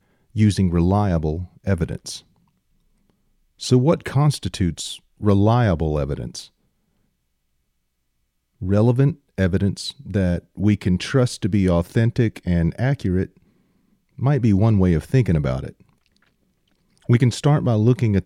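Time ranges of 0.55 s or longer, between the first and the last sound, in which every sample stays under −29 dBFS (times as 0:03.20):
0:02.18–0:03.62
0:06.41–0:08.62
0:13.25–0:14.19
0:15.69–0:17.09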